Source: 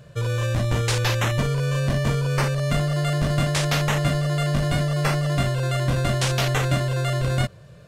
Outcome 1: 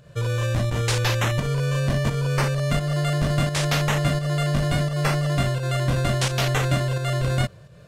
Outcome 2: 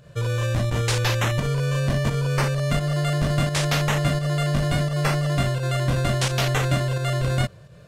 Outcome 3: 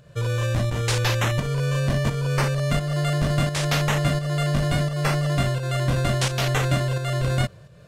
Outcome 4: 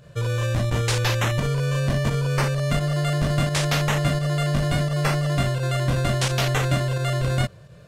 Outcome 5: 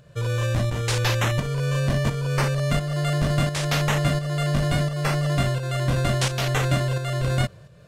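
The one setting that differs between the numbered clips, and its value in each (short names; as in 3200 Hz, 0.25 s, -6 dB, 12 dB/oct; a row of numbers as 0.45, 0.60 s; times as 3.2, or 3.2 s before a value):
pump, release: 176, 115, 295, 66, 473 ms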